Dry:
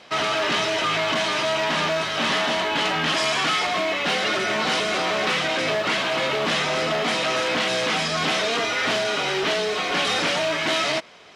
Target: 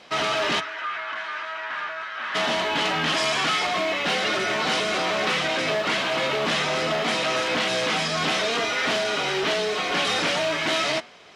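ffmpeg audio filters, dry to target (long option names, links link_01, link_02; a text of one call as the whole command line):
ffmpeg -i in.wav -filter_complex "[0:a]asplit=3[link_01][link_02][link_03];[link_01]afade=type=out:start_time=0.59:duration=0.02[link_04];[link_02]bandpass=frequency=1500:width_type=q:width=2.6:csg=0,afade=type=in:start_time=0.59:duration=0.02,afade=type=out:start_time=2.34:duration=0.02[link_05];[link_03]afade=type=in:start_time=2.34:duration=0.02[link_06];[link_04][link_05][link_06]amix=inputs=3:normalize=0,flanger=delay=3.9:depth=3.2:regen=-90:speed=0.33:shape=triangular,volume=3.5dB" out.wav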